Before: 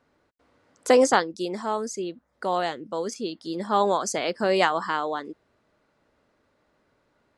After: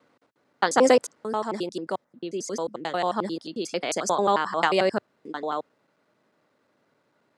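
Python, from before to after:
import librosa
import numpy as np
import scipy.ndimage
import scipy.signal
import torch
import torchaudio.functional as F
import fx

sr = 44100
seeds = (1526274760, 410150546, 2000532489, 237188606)

y = fx.block_reorder(x, sr, ms=89.0, group=7)
y = scipy.signal.sosfilt(scipy.signal.butter(4, 120.0, 'highpass', fs=sr, output='sos'), y)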